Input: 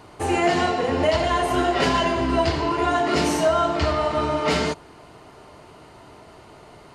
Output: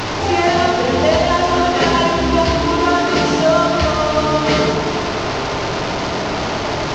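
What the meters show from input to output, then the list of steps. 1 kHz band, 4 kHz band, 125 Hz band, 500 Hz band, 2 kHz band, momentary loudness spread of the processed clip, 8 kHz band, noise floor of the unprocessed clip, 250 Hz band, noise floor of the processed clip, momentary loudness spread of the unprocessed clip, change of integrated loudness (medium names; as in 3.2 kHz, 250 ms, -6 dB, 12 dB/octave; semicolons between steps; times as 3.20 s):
+6.5 dB, +8.5 dB, +7.5 dB, +6.5 dB, +7.0 dB, 6 LU, +7.0 dB, -47 dBFS, +7.0 dB, -21 dBFS, 3 LU, +5.5 dB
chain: one-bit delta coder 32 kbps, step -20.5 dBFS; feedback echo behind a low-pass 89 ms, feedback 74%, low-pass 1.2 kHz, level -5 dB; trim +4.5 dB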